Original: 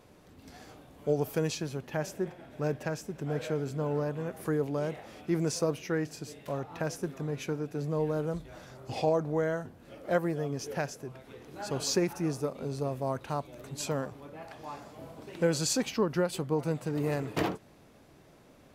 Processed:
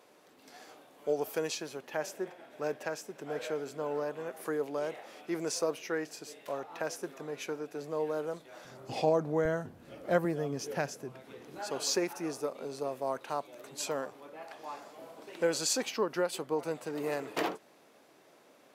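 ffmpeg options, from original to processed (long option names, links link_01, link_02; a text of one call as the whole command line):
ffmpeg -i in.wav -af "asetnsamples=nb_out_samples=441:pad=0,asendcmd='8.65 highpass f 160;9.45 highpass f 74;10.25 highpass f 160;11.59 highpass f 370',highpass=400" out.wav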